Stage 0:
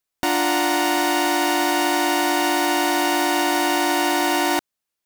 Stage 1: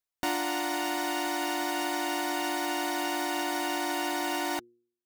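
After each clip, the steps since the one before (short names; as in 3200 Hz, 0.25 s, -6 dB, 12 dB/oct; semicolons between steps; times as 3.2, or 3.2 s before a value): reverb removal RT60 0.76 s; de-hum 118.8 Hz, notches 4; gain -8 dB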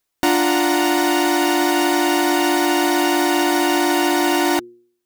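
bell 330 Hz +5.5 dB 0.49 oct; in parallel at -2 dB: limiter -27.5 dBFS, peak gain reduction 10.5 dB; on the sum: gain +9 dB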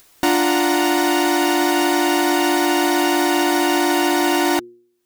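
upward compressor, threshold -32 dBFS; overloaded stage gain 9.5 dB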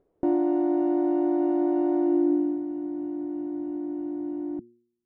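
low-pass sweep 460 Hz -> 210 Hz, 1.97–2.65; gain -8.5 dB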